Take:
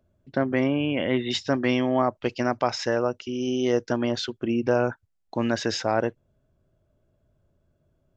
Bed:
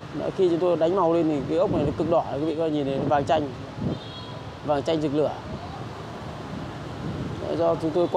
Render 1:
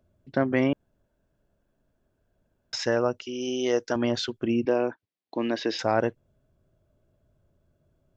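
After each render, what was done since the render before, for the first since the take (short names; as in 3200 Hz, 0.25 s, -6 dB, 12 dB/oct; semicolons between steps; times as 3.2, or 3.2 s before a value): 0.73–2.73 room tone; 3.25–3.96 tone controls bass -11 dB, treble +3 dB; 4.65–5.79 speaker cabinet 270–4700 Hz, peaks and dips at 310 Hz +5 dB, 590 Hz -3 dB, 840 Hz -4 dB, 1400 Hz -10 dB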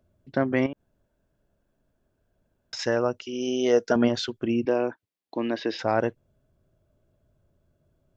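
0.66–2.79 compressor, threshold -31 dBFS; 3.32–4.07 small resonant body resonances 200/440/650/1400 Hz, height 7 dB -> 11 dB; 5.4–5.88 air absorption 100 m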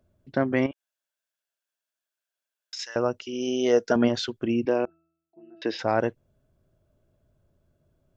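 0.71–2.96 Bessel high-pass 2900 Hz; 4.85–5.62 octave resonator E, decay 0.77 s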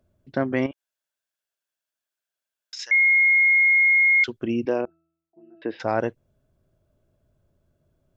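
2.91–4.24 bleep 2150 Hz -14 dBFS; 4.81–5.8 air absorption 490 m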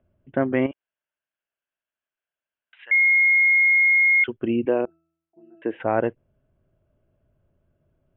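steep low-pass 3200 Hz 96 dB/oct; dynamic EQ 400 Hz, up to +3 dB, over -34 dBFS, Q 0.81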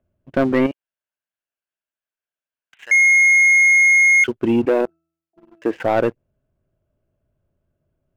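sample leveller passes 2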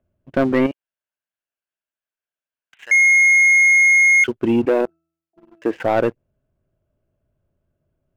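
nothing audible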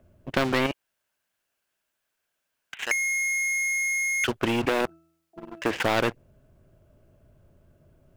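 compressor, threshold -15 dBFS, peak gain reduction 3.5 dB; spectral compressor 2:1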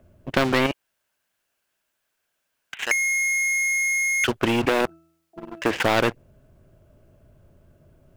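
gain +3.5 dB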